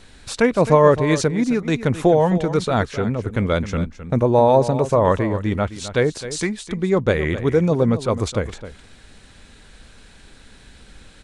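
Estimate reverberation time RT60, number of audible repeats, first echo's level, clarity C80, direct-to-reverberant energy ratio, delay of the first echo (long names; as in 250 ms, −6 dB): no reverb audible, 1, −13.0 dB, no reverb audible, no reverb audible, 262 ms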